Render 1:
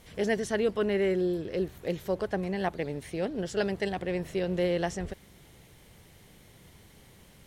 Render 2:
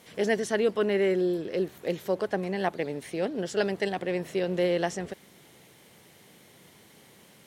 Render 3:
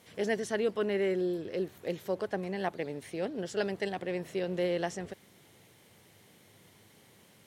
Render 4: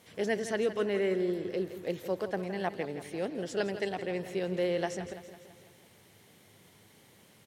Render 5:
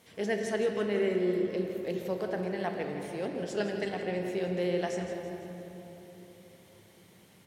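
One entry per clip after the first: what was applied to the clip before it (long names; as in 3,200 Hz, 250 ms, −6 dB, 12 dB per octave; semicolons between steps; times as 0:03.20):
high-pass filter 190 Hz 12 dB per octave; level +2.5 dB
parametric band 100 Hz +10.5 dB 0.3 octaves; level −5 dB
repeating echo 166 ms, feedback 56%, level −12 dB
convolution reverb RT60 3.6 s, pre-delay 4 ms, DRR 3.5 dB; level −1.5 dB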